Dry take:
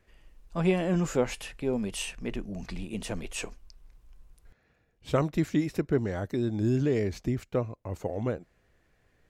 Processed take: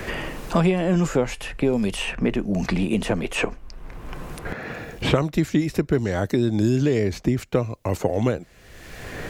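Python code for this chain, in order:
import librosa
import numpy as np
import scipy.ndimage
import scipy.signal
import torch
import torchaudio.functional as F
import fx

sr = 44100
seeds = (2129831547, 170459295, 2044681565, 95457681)

y = fx.band_squash(x, sr, depth_pct=100)
y = F.gain(torch.from_numpy(y), 7.0).numpy()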